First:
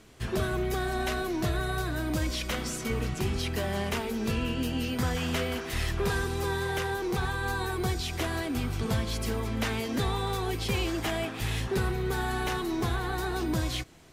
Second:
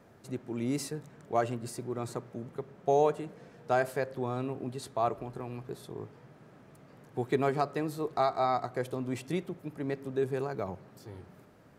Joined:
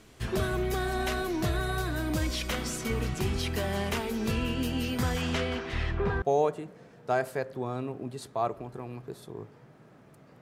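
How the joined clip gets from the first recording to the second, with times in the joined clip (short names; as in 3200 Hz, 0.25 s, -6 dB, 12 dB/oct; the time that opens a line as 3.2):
first
5.21–6.22 LPF 8900 Hz -> 1400 Hz
6.22 switch to second from 2.83 s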